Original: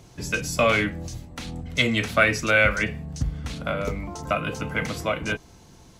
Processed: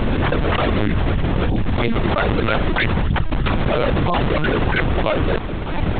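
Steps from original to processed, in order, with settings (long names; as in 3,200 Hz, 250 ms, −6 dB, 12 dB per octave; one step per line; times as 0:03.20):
reverb reduction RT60 1.4 s
0:01.09–0:01.68: dynamic equaliser 180 Hz, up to −5 dB, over −54 dBFS, Q 2.6
sample-and-hold swept by an LFO 35×, swing 160% 3.1 Hz
linear-prediction vocoder at 8 kHz pitch kept
envelope flattener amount 100%
level −2 dB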